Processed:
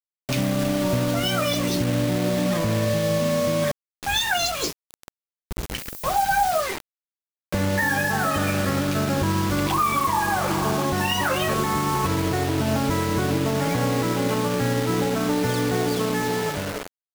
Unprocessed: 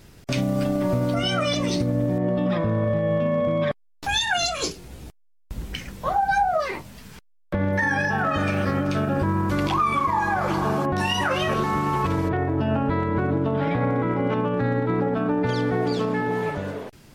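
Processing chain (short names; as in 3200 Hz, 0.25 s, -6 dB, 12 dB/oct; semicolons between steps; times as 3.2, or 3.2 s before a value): bit-crush 5-bit; 5.77–6.61 added noise violet -38 dBFS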